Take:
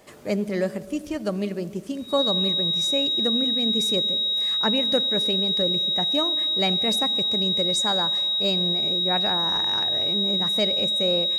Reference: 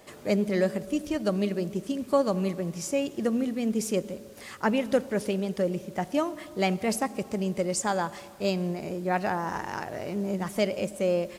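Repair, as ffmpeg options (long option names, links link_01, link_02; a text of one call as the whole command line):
ffmpeg -i in.wav -af "bandreject=frequency=3800:width=30" out.wav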